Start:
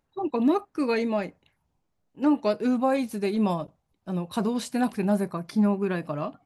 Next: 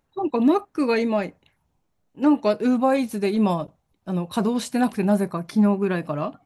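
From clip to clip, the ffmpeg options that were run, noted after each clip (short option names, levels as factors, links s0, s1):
-af "bandreject=f=4800:w=21,volume=1.58"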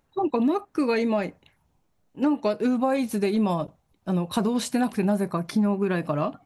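-af "acompressor=threshold=0.0708:ratio=4,volume=1.33"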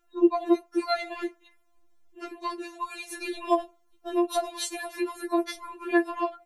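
-af "afftfilt=real='re*4*eq(mod(b,16),0)':imag='im*4*eq(mod(b,16),0)':win_size=2048:overlap=0.75,volume=1.33"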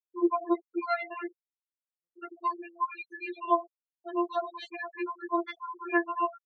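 -af "afftfilt=real='re*gte(hypot(re,im),0.0355)':imag='im*gte(hypot(re,im),0.0355)':win_size=1024:overlap=0.75,highpass=470,equalizer=f=470:t=q:w=4:g=6,equalizer=f=750:t=q:w=4:g=-6,equalizer=f=1100:t=q:w=4:g=5,lowpass=f=2900:w=0.5412,lowpass=f=2900:w=1.3066"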